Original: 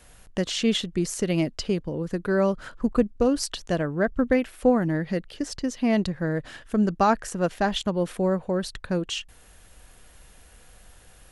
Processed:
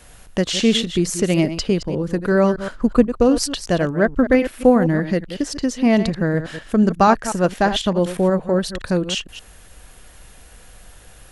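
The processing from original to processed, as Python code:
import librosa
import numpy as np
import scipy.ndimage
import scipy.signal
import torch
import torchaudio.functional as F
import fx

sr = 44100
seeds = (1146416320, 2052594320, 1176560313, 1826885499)

y = fx.reverse_delay(x, sr, ms=122, wet_db=-11.0)
y = y * 10.0 ** (6.5 / 20.0)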